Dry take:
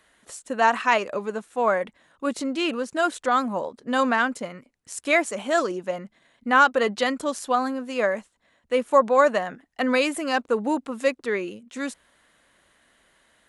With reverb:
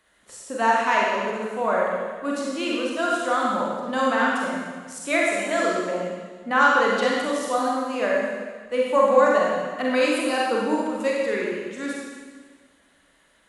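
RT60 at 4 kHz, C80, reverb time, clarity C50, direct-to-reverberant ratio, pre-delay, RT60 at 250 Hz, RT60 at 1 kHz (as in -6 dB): 1.5 s, 1.0 dB, 1.6 s, -2.0 dB, -4.0 dB, 32 ms, 1.7 s, 1.5 s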